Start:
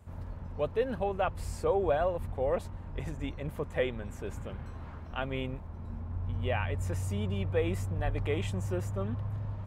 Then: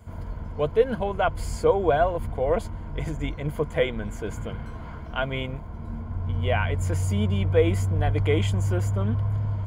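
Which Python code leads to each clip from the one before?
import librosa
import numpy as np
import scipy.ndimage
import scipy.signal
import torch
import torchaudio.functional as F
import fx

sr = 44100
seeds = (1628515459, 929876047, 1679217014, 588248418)

y = fx.ripple_eq(x, sr, per_octave=1.8, db=9)
y = y * librosa.db_to_amplitude(6.5)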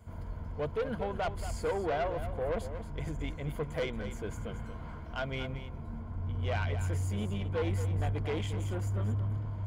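y = 10.0 ** (-21.5 / 20.0) * np.tanh(x / 10.0 ** (-21.5 / 20.0))
y = y + 10.0 ** (-10.5 / 20.0) * np.pad(y, (int(229 * sr / 1000.0), 0))[:len(y)]
y = y * librosa.db_to_amplitude(-6.0)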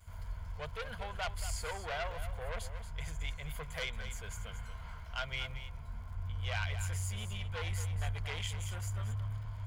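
y = fx.dmg_crackle(x, sr, seeds[0], per_s=54.0, level_db=-57.0)
y = fx.vibrato(y, sr, rate_hz=0.34, depth_cents=15.0)
y = fx.tone_stack(y, sr, knobs='10-0-10')
y = y * librosa.db_to_amplitude(6.0)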